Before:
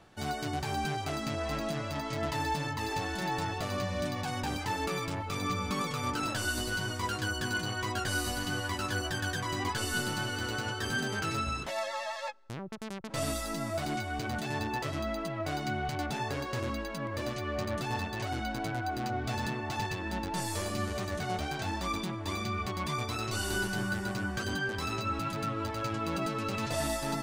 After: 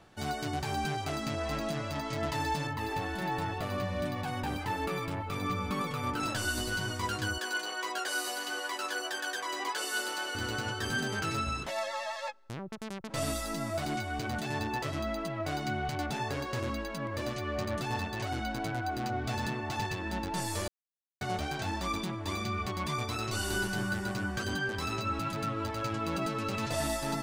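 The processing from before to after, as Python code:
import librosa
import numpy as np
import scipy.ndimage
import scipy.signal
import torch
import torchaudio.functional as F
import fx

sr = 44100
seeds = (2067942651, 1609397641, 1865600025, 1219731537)

y = fx.peak_eq(x, sr, hz=6200.0, db=-8.5, octaves=1.3, at=(2.67, 6.2))
y = fx.highpass(y, sr, hz=380.0, slope=24, at=(7.38, 10.35))
y = fx.edit(y, sr, fx.silence(start_s=20.68, length_s=0.53), tone=tone)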